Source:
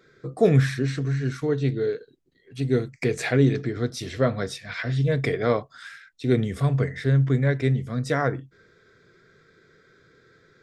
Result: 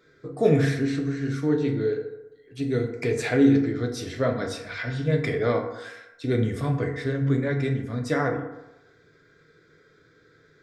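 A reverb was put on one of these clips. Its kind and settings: FDN reverb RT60 0.99 s, low-frequency decay 0.8×, high-frequency decay 0.45×, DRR 2 dB; trim -3 dB

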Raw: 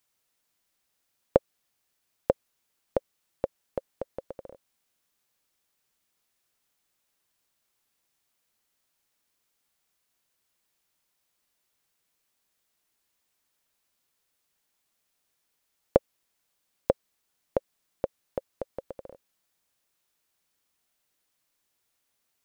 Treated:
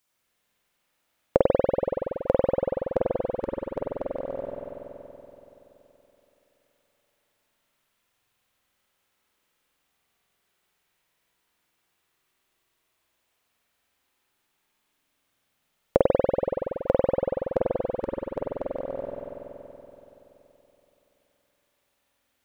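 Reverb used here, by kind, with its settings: spring tank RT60 3.5 s, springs 47 ms, chirp 55 ms, DRR -6.5 dB

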